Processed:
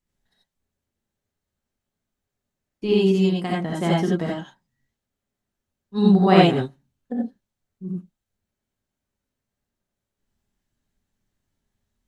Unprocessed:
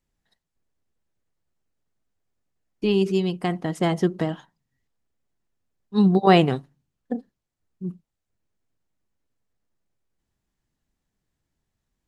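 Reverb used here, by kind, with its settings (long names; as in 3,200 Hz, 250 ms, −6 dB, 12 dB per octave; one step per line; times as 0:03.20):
reverb whose tail is shaped and stops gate 110 ms rising, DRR −4 dB
level −4 dB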